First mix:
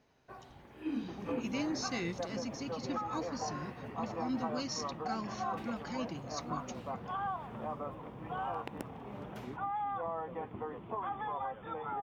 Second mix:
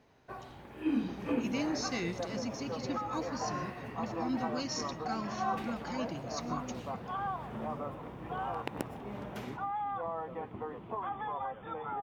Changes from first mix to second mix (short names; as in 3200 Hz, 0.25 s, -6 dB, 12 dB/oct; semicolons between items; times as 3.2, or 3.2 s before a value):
first sound +4.5 dB; reverb: on, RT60 0.35 s